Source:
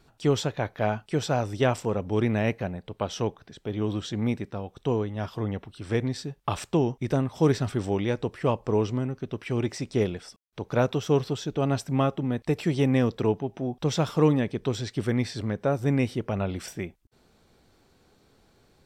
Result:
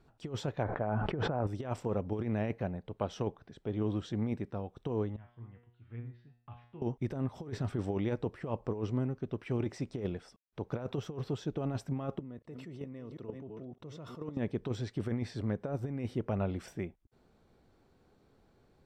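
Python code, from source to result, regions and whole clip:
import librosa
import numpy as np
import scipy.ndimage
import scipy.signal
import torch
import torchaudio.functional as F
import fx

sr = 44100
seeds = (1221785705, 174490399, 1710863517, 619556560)

y = fx.chain(x, sr, fx.cheby1_lowpass(hz=1300.0, order=2),
    fx.sustainer(db_per_s=21.0), at=(0.63, 1.47))
y = fx.chain(y, sr, fx.lowpass(hz=2800.0, slope=24),
    fx.peak_eq(hz=520.0, db=-13.0, octaves=2.3),
    fx.comb_fb(f0_hz=120.0, decay_s=0.53, harmonics='all', damping=0.0, mix_pct=90), at=(5.16, 6.82))
y = fx.chain(y, sr, fx.reverse_delay(ms=245, wet_db=-11),
    fx.level_steps(step_db=20),
    fx.notch_comb(f0_hz=800.0), at=(12.19, 14.37))
y = fx.high_shelf(y, sr, hz=2300.0, db=-11.5)
y = fx.over_compress(y, sr, threshold_db=-26.0, ratio=-0.5)
y = F.gain(torch.from_numpy(y), -6.0).numpy()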